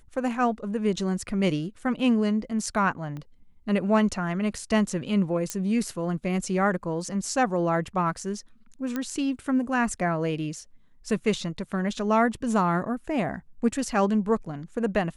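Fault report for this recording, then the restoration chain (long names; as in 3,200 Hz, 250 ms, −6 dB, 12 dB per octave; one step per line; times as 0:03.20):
0:03.17: click −26 dBFS
0:05.50: click −13 dBFS
0:08.96: click −16 dBFS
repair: click removal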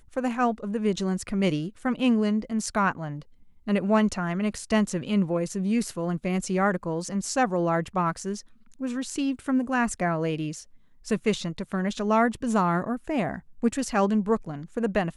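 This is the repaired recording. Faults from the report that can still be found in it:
0:03.17: click
0:08.96: click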